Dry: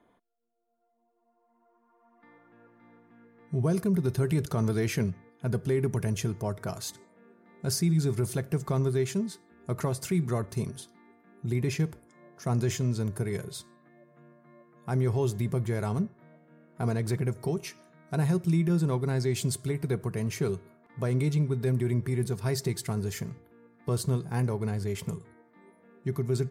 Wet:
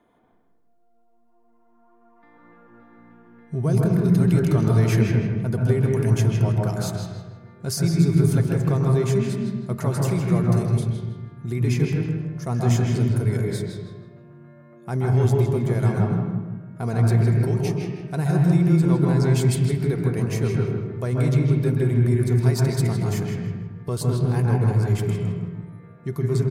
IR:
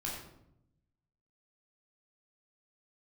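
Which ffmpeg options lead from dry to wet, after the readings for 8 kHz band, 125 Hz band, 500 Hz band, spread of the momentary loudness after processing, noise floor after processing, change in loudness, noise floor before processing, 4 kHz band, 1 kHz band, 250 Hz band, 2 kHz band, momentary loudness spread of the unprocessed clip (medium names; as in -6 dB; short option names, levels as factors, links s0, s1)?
+2.5 dB, +9.5 dB, +6.0 dB, 12 LU, -58 dBFS, +8.0 dB, -70 dBFS, +3.5 dB, +6.5 dB, +8.0 dB, +6.0 dB, 11 LU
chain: -filter_complex "[0:a]asplit=2[s0][s1];[s1]adelay=159,lowpass=f=3600:p=1,volume=0.531,asplit=2[s2][s3];[s3]adelay=159,lowpass=f=3600:p=1,volume=0.38,asplit=2[s4][s5];[s5]adelay=159,lowpass=f=3600:p=1,volume=0.38,asplit=2[s6][s7];[s7]adelay=159,lowpass=f=3600:p=1,volume=0.38,asplit=2[s8][s9];[s9]adelay=159,lowpass=f=3600:p=1,volume=0.38[s10];[s0][s2][s4][s6][s8][s10]amix=inputs=6:normalize=0,asplit=2[s11][s12];[1:a]atrim=start_sample=2205,lowpass=3200,adelay=130[s13];[s12][s13]afir=irnorm=-1:irlink=0,volume=0.794[s14];[s11][s14]amix=inputs=2:normalize=0,volume=1.26"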